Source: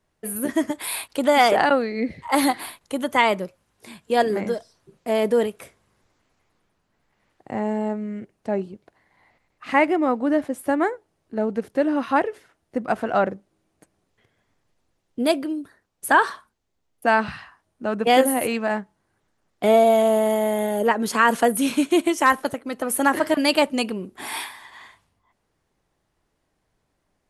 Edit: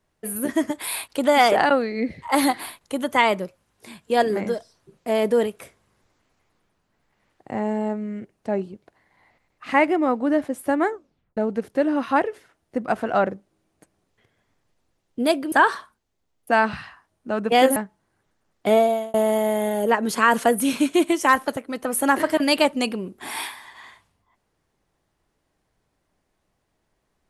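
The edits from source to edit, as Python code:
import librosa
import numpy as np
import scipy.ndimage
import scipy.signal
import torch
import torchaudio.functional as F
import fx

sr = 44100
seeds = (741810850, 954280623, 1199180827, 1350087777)

y = fx.edit(x, sr, fx.tape_stop(start_s=10.88, length_s=0.49),
    fx.cut(start_s=15.52, length_s=0.55),
    fx.cut(start_s=18.31, length_s=0.42),
    fx.fade_out_span(start_s=19.69, length_s=0.42), tone=tone)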